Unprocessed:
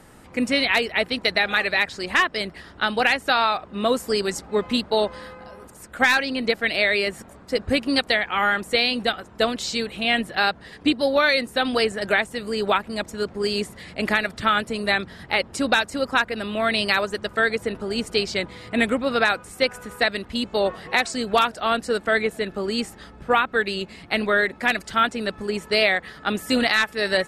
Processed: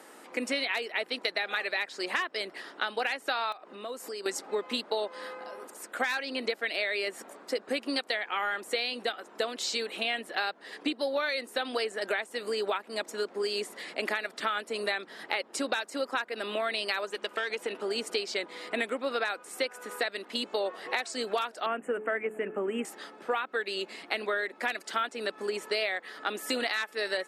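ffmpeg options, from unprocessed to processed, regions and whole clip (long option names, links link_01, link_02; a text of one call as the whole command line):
ffmpeg -i in.wav -filter_complex "[0:a]asettb=1/sr,asplit=3[link_01][link_02][link_03];[link_01]atrim=end=3.524[link_04];[link_02]atrim=start=3.52:end=4.26,asetpts=PTS-STARTPTS,afade=type=in:duration=0.004:curve=qsin,afade=type=out:start_time=0.736:duration=0.004:curve=qsin,bandreject=frequency=3400:width=18,acompressor=threshold=-37dB:ratio=4:attack=3.2:release=140:knee=1:detection=peak,aeval=exprs='(mod(21.1*val(0)+1,2)-1)/21.1':channel_layout=same[link_05];[link_03]atrim=start=4.256[link_06];[link_04][link_05]acrossfade=duration=0.004:curve1=hsin:curve2=qsin[link_07];[link_07][link_06]acrossfade=duration=0.004:curve1=qsin:curve2=hsin,asettb=1/sr,asplit=3[link_08][link_09][link_10];[link_08]atrim=end=17.094[link_11];[link_09]atrim=start=17.09:end=17.85,asetpts=PTS-STARTPTS,afade=type=in:duration=0.004:curve=qsin,afade=type=out:start_time=0.756:duration=0.004:curve=qsin,aeval=exprs='(tanh(3.98*val(0)+0.45)-tanh(0.45))/3.98':channel_layout=same,equalizer=frequency=2800:width=2.1:gain=6.5,acompressor=threshold=-23dB:ratio=2.5:attack=3.2:release=140:knee=1:detection=peak[link_12];[link_10]atrim=start=17.846[link_13];[link_11][link_12]acrossfade=duration=0.004:curve1=hsin:curve2=qsin[link_14];[link_14][link_13]acrossfade=duration=0.004:curve1=qsin:curve2=hsin,asettb=1/sr,asplit=3[link_15][link_16][link_17];[link_15]atrim=end=21.664[link_18];[link_16]atrim=start=21.66:end=22.85,asetpts=PTS-STARTPTS,afade=type=in:duration=0.004:curve=qsin,afade=type=out:start_time=1.186:duration=0.004:curve=qsin,asuperstop=centerf=4600:order=8:qfactor=1.1,bass=frequency=250:gain=11,treble=frequency=4000:gain=-11,bandreject=frequency=107.4:width_type=h:width=4,bandreject=frequency=214.8:width_type=h:width=4,bandreject=frequency=322.2:width_type=h:width=4,bandreject=frequency=429.6:width_type=h:width=4,bandreject=frequency=537:width_type=h:width=4[link_19];[link_17]atrim=start=22.846[link_20];[link_18][link_19]acrossfade=duration=0.004:curve1=hsin:curve2=qsin[link_21];[link_21][link_20]acrossfade=duration=0.004:curve1=qsin:curve2=hsin,highpass=frequency=300:width=0.5412,highpass=frequency=300:width=1.3066,acompressor=threshold=-29dB:ratio=4" out.wav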